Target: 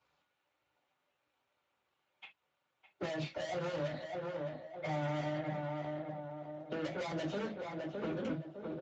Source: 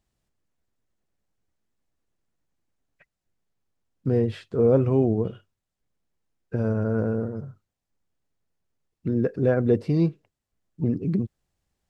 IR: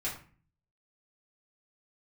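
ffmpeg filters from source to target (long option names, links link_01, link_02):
-filter_complex "[0:a]acrossover=split=390 3500:gain=0.0891 1 0.126[link_01][link_02][link_03];[link_01][link_02][link_03]amix=inputs=3:normalize=0,bandreject=frequency=60:width_type=h:width=6,bandreject=frequency=120:width_type=h:width=6,bandreject=frequency=180:width_type=h:width=6,bandreject=frequency=240:width_type=h:width=6,aeval=exprs='(tanh(89.1*val(0)+0.2)-tanh(0.2))/89.1':channel_layout=same,asetrate=59535,aresample=44100,asplit=2[link_04][link_05];[link_05]adelay=609,lowpass=frequency=1500:poles=1,volume=-8dB,asplit=2[link_06][link_07];[link_07]adelay=609,lowpass=frequency=1500:poles=1,volume=0.42,asplit=2[link_08][link_09];[link_09]adelay=609,lowpass=frequency=1500:poles=1,volume=0.42,asplit=2[link_10][link_11];[link_11]adelay=609,lowpass=frequency=1500:poles=1,volume=0.42,asplit=2[link_12][link_13];[link_13]adelay=609,lowpass=frequency=1500:poles=1,volume=0.42[link_14];[link_04][link_06][link_08][link_10][link_12][link_14]amix=inputs=6:normalize=0[link_15];[1:a]atrim=start_sample=2205,afade=type=out:start_time=0.21:duration=0.01,atrim=end_sample=9702,asetrate=83790,aresample=44100[link_16];[link_15][link_16]afir=irnorm=-1:irlink=0,acrossover=split=240|1300[link_17][link_18][link_19];[link_17]acompressor=threshold=-50dB:ratio=4[link_20];[link_18]acompressor=threshold=-53dB:ratio=4[link_21];[link_19]acompressor=threshold=-59dB:ratio=4[link_22];[link_20][link_21][link_22]amix=inputs=3:normalize=0,volume=13dB" -ar 16000 -c:a libspeex -b:a 17k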